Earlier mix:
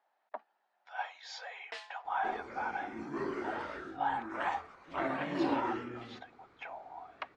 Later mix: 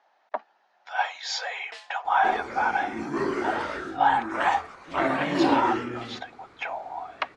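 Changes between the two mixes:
speech +12.0 dB; second sound +9.5 dB; master: add treble shelf 5.4 kHz +9 dB

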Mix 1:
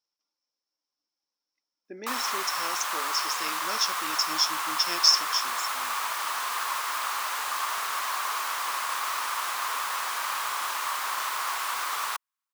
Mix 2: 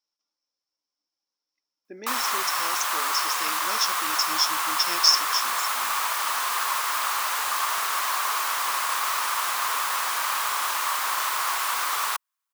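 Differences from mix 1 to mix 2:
background +3.5 dB; master: add treble shelf 8 kHz +4 dB

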